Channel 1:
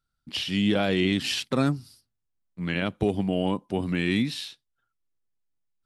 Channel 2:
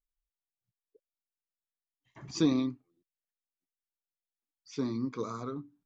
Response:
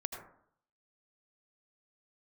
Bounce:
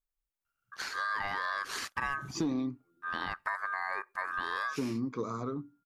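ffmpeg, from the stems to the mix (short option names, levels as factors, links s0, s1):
-filter_complex "[0:a]aeval=exprs='val(0)*sin(2*PI*1400*n/s)':c=same,adelay=450,volume=0.841[s0];[1:a]dynaudnorm=f=110:g=7:m=1.58,asoftclip=type=tanh:threshold=0.158,volume=1[s1];[s0][s1]amix=inputs=2:normalize=0,equalizer=f=4200:w=0.73:g=-6,acompressor=threshold=0.0282:ratio=3"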